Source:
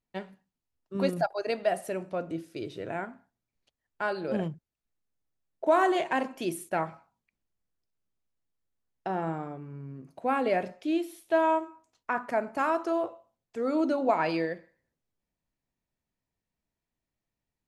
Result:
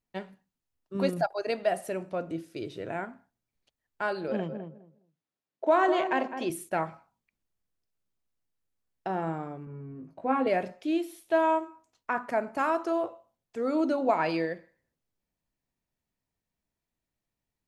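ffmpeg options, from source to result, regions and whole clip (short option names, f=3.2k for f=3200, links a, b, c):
-filter_complex "[0:a]asettb=1/sr,asplit=3[a][b][c];[a]atrim=end=4.284[d];[b]atrim=start=4.28:end=6.5,asetpts=PTS-STARTPTS,afade=t=in:d=0.004:c=qsin,afade=t=out:st=2.216:d=0.004:c=qsin,highpass=180,lowpass=5.2k,asplit=2[e][f];[f]adelay=206,lowpass=f=1k:p=1,volume=-7dB,asplit=2[g][h];[h]adelay=206,lowpass=f=1k:p=1,volume=0.19,asplit=2[i][j];[j]adelay=206,lowpass=f=1k:p=1,volume=0.19[k];[e][g][i][k]amix=inputs=4:normalize=0,atrim=end_sample=97902[l];[c]atrim=start=6.496[m];[d][l]acrossfade=d=0.004:c1=hsin:c2=qsin[n];[n][m]acrossfade=d=0.004:c1=qsin:c2=hsin,asettb=1/sr,asplit=3[o][p][q];[o]atrim=end=9.654[r];[p]atrim=start=9.65:end=10.47,asetpts=PTS-STARTPTS,afade=t=in:d=0.004:c=qsin,afade=t=out:st=0.816:d=0.004:c=qsin,lowpass=f=1.4k:p=1,asplit=2[s][t];[t]adelay=19,volume=-3dB[u];[s][u]amix=inputs=2:normalize=0,atrim=end_sample=36162[v];[q]atrim=start=10.466[w];[r][v]acrossfade=d=0.004:c1=hsin:c2=qsin[x];[x][w]acrossfade=d=0.004:c1=qsin:c2=hsin"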